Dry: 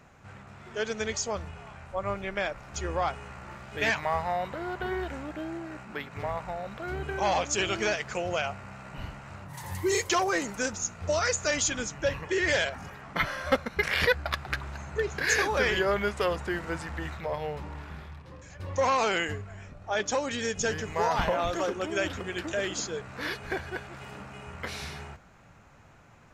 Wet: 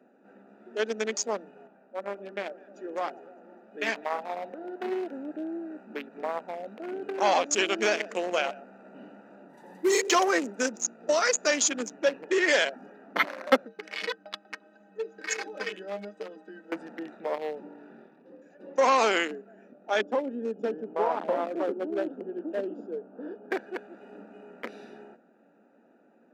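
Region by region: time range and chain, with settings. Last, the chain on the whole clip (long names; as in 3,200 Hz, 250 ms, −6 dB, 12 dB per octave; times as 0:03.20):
0:01.67–0:04.82: delay that swaps between a low-pass and a high-pass 102 ms, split 960 Hz, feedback 73%, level −11 dB + flanger 1.4 Hz, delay 0.4 ms, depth 3.5 ms, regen −69% + one half of a high-frequency compander decoder only
0:07.66–0:10.23: single-tap delay 124 ms −10 dB + hard clipping −19 dBFS
0:13.66–0:16.72: low-pass filter 6,100 Hz + high-shelf EQ 3,200 Hz +10 dB + stiff-string resonator 93 Hz, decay 0.3 s, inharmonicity 0.03
0:20.02–0:23.51: moving average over 21 samples + saturating transformer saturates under 220 Hz
whole clip: adaptive Wiener filter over 41 samples; Butterworth high-pass 220 Hz 48 dB per octave; level +4 dB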